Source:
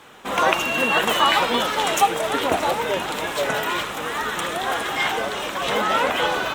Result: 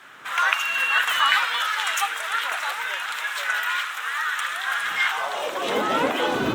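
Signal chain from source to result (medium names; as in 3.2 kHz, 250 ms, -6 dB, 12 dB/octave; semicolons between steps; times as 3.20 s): wind noise 130 Hz -20 dBFS; high-pass sweep 1.5 kHz -> 280 Hz, 5.05–5.72 s; trim -3.5 dB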